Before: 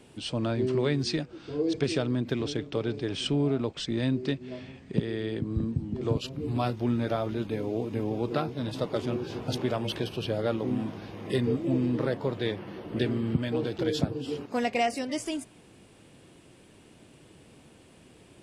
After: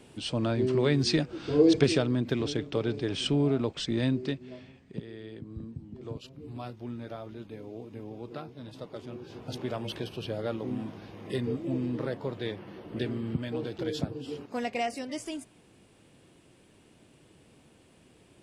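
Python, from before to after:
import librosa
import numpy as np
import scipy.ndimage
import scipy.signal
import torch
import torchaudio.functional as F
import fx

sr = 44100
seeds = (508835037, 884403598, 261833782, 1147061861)

y = fx.gain(x, sr, db=fx.line((0.75, 0.5), (1.64, 8.0), (2.08, 0.5), (4.04, 0.5), (5.04, -11.5), (9.09, -11.5), (9.75, -4.5)))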